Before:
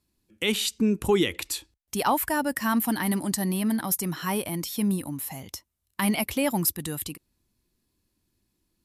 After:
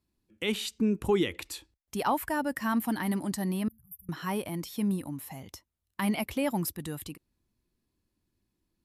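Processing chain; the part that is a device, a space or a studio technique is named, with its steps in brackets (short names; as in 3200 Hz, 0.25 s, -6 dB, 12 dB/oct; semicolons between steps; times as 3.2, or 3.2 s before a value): 3.68–4.09 inverse Chebyshev band-stop 260–7200 Hz, stop band 50 dB; behind a face mask (high shelf 3500 Hz -7.5 dB); gain -3.5 dB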